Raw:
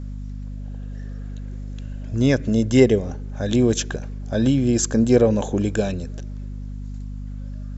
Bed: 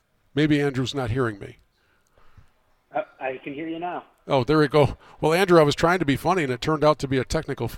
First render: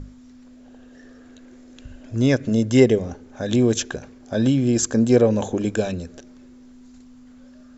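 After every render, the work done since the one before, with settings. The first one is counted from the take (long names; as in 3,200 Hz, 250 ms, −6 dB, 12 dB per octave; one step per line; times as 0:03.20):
mains-hum notches 50/100/150/200 Hz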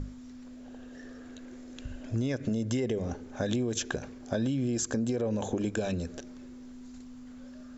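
brickwall limiter −14 dBFS, peak gain reduction 10.5 dB
downward compressor 6 to 1, threshold −27 dBFS, peak gain reduction 9 dB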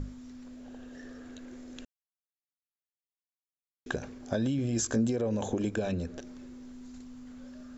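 0:01.85–0:03.86: silence
0:04.57–0:05.08: double-tracking delay 18 ms −5 dB
0:05.75–0:06.21: low-pass filter 3,600 Hz 6 dB per octave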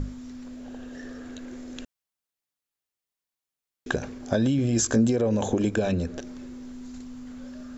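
level +6.5 dB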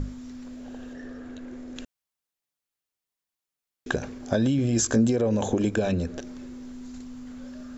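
0:00.93–0:01.76: high-shelf EQ 3,200 Hz −9.5 dB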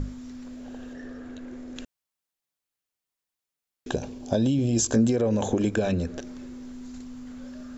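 0:03.89–0:04.93: flat-topped bell 1,600 Hz −9 dB 1.1 octaves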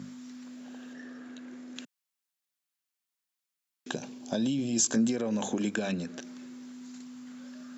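high-pass filter 180 Hz 24 dB per octave
parametric band 470 Hz −9.5 dB 1.7 octaves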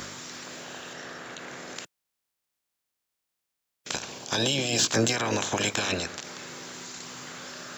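ceiling on every frequency bin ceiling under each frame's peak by 27 dB
in parallel at −4.5 dB: soft clipping −26 dBFS, distortion −10 dB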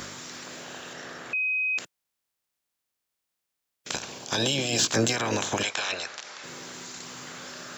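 0:01.33–0:01.78: beep over 2,520 Hz −23.5 dBFS
0:05.63–0:06.44: three-way crossover with the lows and the highs turned down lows −17 dB, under 530 Hz, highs −23 dB, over 7,600 Hz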